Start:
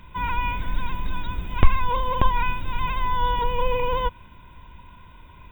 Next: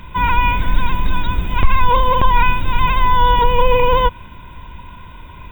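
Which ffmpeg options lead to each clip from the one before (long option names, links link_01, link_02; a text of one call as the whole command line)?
ffmpeg -i in.wav -af "alimiter=level_in=11.5dB:limit=-1dB:release=50:level=0:latency=1,volume=-1dB" out.wav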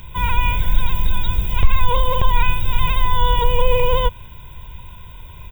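ffmpeg -i in.wav -af "firequalizer=gain_entry='entry(130,0);entry(240,-12);entry(440,-3);entry(1200,-9);entry(5500,8);entry(15000,10)':delay=0.05:min_phase=1" out.wav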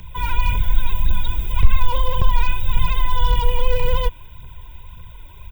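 ffmpeg -i in.wav -filter_complex "[0:a]aphaser=in_gain=1:out_gain=1:delay=3.6:decay=0.5:speed=1.8:type=triangular,acrossover=split=290|3900[link_01][link_02][link_03];[link_02]asoftclip=type=hard:threshold=-18dB[link_04];[link_01][link_04][link_03]amix=inputs=3:normalize=0,volume=-5dB" out.wav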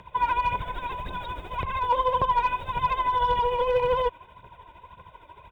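ffmpeg -i in.wav -af "bandpass=frequency=760:width_type=q:width=1.1:csg=0,tremolo=f=13:d=0.56,volume=8dB" out.wav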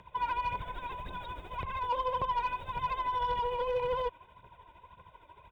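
ffmpeg -i in.wav -af "asoftclip=type=tanh:threshold=-15.5dB,volume=-7dB" out.wav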